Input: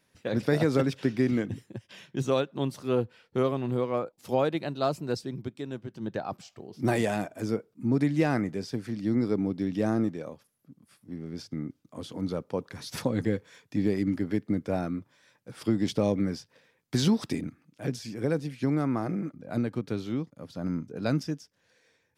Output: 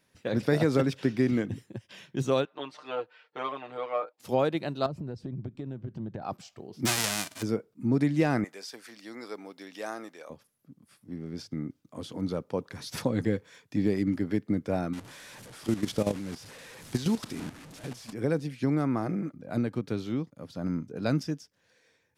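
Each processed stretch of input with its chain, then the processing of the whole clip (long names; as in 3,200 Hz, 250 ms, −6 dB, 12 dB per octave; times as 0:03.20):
0:02.45–0:04.20: band-pass filter 680–3,300 Hz + comb filter 6.6 ms, depth 87%
0:04.86–0:06.22: RIAA equalisation playback + downward compressor 12 to 1, threshold −32 dBFS
0:06.85–0:07.41: spectral envelope flattened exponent 0.1 + low-pass filter 9,600 Hz + upward compression, threshold −38 dBFS
0:08.44–0:10.30: high-pass filter 770 Hz + high-shelf EQ 7,400 Hz +5.5 dB
0:14.93–0:18.13: linear delta modulator 64 kbit/s, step −32 dBFS + output level in coarse steps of 12 dB
whole clip: no processing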